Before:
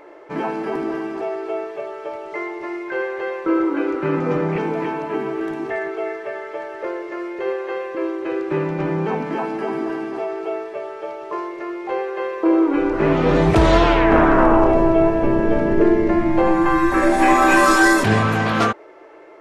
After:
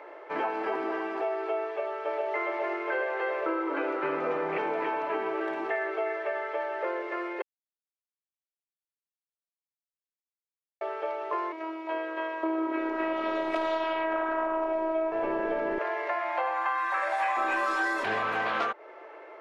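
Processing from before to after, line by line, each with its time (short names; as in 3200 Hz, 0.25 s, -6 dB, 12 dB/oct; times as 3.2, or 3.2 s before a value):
1.66–2.32 echo throw 0.41 s, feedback 85%, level -1.5 dB
7.42–10.81 mute
11.52–15.12 robotiser 323 Hz
15.78–17.37 HPF 610 Hz 24 dB/oct
whole clip: three-band isolator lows -23 dB, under 410 Hz, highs -15 dB, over 4000 Hz; compressor, threshold -26 dBFS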